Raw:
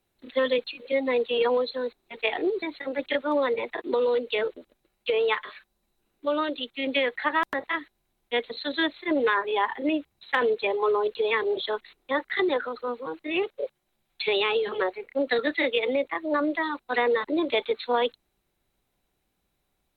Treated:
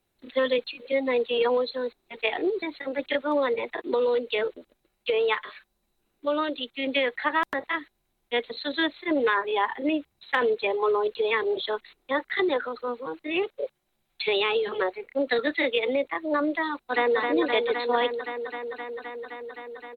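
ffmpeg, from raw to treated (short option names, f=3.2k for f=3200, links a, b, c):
-filter_complex "[0:a]asplit=2[a][b];[b]afade=t=in:st=16.7:d=0.01,afade=t=out:st=17.17:d=0.01,aecho=0:1:260|520|780|1040|1300|1560|1820|2080|2340|2600|2860|3120:0.595662|0.506313|0.430366|0.365811|0.310939|0.264298|0.224654|0.190956|0.162312|0.137965|0.117271|0.09968[c];[a][c]amix=inputs=2:normalize=0"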